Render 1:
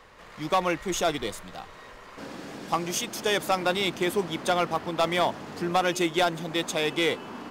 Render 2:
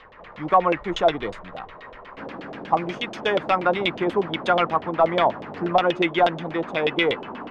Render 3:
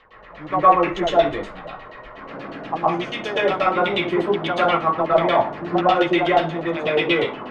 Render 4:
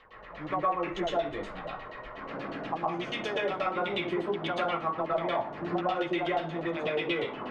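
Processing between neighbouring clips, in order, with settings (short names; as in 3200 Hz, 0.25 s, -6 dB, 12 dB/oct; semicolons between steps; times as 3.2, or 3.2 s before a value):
LFO low-pass saw down 8.3 Hz 510–3500 Hz; gain +2 dB
reverb RT60 0.35 s, pre-delay 0.105 s, DRR -8 dB; gain -6 dB
compressor 2.5:1, threshold -27 dBFS, peak gain reduction 13 dB; gain -3.5 dB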